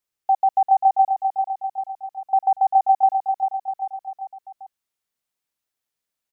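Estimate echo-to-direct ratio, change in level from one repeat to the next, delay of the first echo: -5.0 dB, -5.0 dB, 394 ms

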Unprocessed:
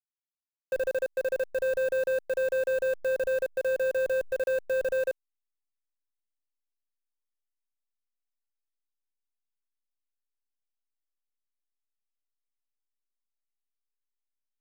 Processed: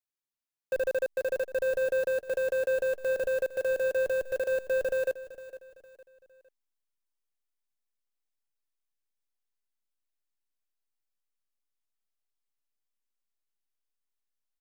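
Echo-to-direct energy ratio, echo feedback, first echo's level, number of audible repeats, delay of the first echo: -15.0 dB, 37%, -15.5 dB, 3, 458 ms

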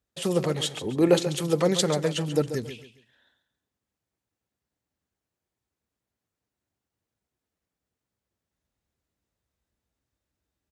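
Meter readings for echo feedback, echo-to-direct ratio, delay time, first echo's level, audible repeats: 30%, -10.5 dB, 137 ms, -11.0 dB, 3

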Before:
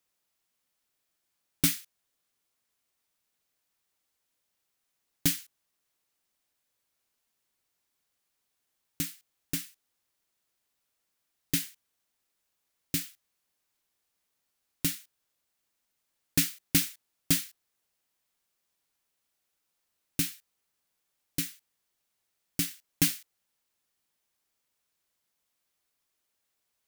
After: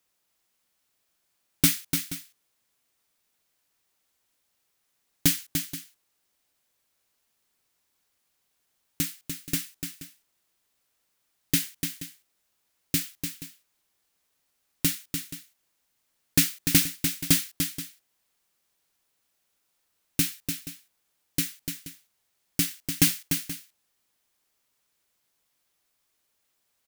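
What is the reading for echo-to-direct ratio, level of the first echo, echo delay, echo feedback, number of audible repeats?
-6.5 dB, -7.0 dB, 295 ms, no regular repeats, 2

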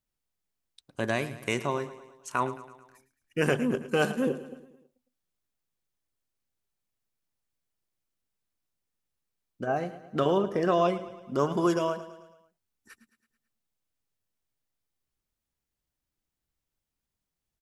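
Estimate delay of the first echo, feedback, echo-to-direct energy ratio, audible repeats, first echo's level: 109 ms, 55%, -13.5 dB, 4, -15.0 dB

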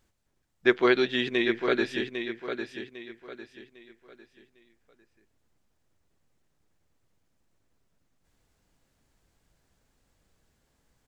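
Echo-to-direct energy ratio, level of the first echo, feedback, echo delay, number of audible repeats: -7.0 dB, -7.5 dB, 33%, 802 ms, 3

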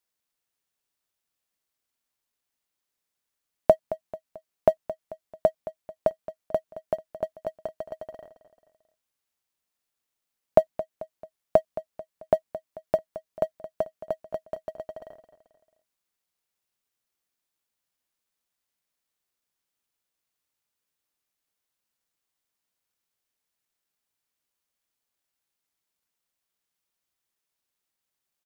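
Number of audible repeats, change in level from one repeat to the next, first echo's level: 3, -6.5 dB, -14.5 dB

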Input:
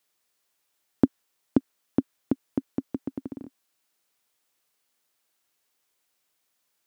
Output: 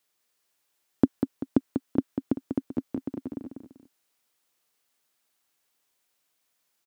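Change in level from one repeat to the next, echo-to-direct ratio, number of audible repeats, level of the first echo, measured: -7.5 dB, -6.0 dB, 2, -6.5 dB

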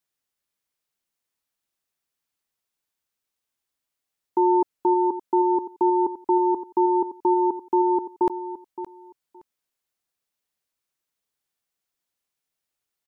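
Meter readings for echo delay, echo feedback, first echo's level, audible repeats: 568 ms, 17%, -12.5 dB, 2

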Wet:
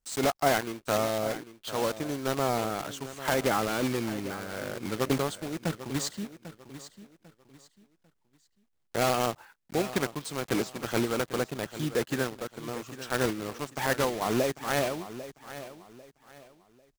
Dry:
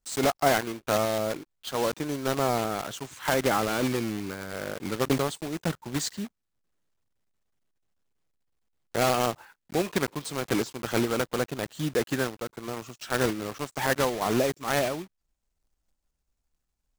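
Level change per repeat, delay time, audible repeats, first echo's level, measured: -10.5 dB, 796 ms, 3, -14.0 dB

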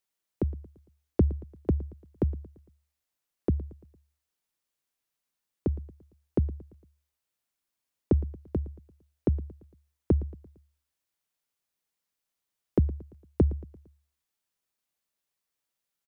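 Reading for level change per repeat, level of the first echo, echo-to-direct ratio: -6.0 dB, -19.0 dB, -18.0 dB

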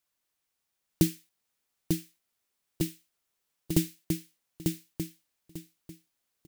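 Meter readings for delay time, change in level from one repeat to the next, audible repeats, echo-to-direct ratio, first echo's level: 895 ms, -13.0 dB, 3, -4.5 dB, -4.5 dB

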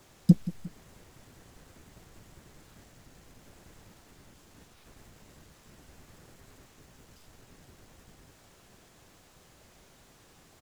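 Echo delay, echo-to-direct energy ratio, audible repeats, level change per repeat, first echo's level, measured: 177 ms, -16.0 dB, 2, -6.0 dB, -17.0 dB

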